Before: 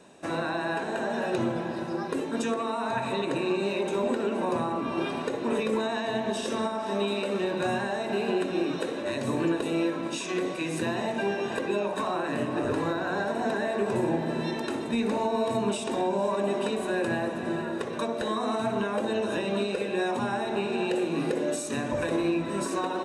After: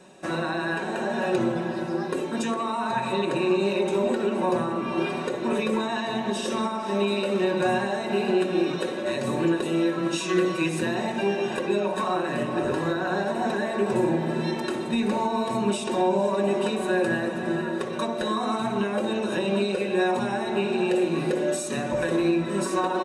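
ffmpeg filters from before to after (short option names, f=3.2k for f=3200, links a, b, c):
-filter_complex "[0:a]asettb=1/sr,asplit=3[a][b][c];[a]atrim=end=9.974[d];[b]atrim=start=9.97:end=10.68,asetpts=PTS-STARTPTS,afade=t=in:d=0.004:c=qsin,afade=t=out:st=0.706:d=0.004:c=qsin,aecho=1:1:6.1:0.69,atrim=end_sample=31311[e];[c]atrim=start=10.676[f];[d][e]acrossfade=d=0.004:c1=hsin:c2=qsin[g];[g][f]acrossfade=d=0.004:c1=qsin:c2=hsin,aecho=1:1:5.4:0.55,volume=1.5dB"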